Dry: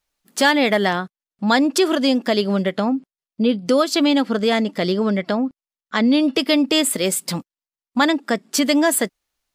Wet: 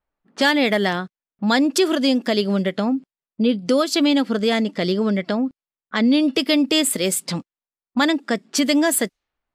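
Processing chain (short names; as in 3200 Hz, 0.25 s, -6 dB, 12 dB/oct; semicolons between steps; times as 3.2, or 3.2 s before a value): dynamic EQ 940 Hz, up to -4 dB, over -32 dBFS, Q 1; low-pass opened by the level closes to 1400 Hz, open at -17.5 dBFS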